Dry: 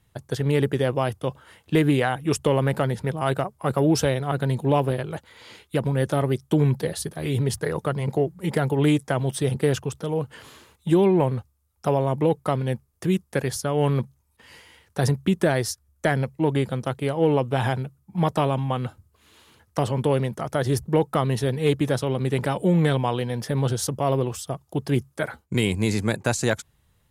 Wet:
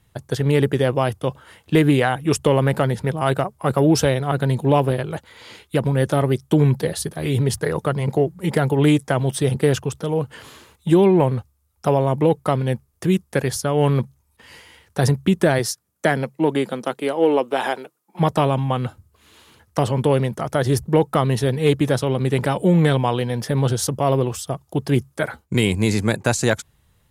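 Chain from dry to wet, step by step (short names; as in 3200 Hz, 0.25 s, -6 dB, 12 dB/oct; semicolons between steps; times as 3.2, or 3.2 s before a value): 15.58–18.19 HPF 120 Hz -> 370 Hz 24 dB/oct; gain +4 dB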